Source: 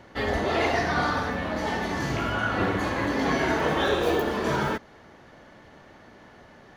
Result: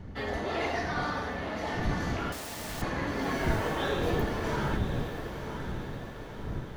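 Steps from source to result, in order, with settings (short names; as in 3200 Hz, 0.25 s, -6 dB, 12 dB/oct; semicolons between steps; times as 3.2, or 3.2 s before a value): wind noise 160 Hz -30 dBFS; 2.32–2.82 wrapped overs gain 30.5 dB; diffused feedback echo 1.005 s, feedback 51%, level -8 dB; gain -7 dB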